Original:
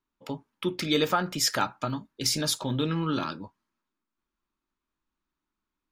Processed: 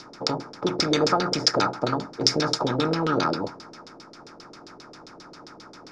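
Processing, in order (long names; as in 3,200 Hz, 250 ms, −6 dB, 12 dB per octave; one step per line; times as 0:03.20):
compressor on every frequency bin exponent 0.4
high shelf with overshoot 4,100 Hz +8 dB, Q 3
auto-filter low-pass saw down 7.5 Hz 400–4,000 Hz
level −2.5 dB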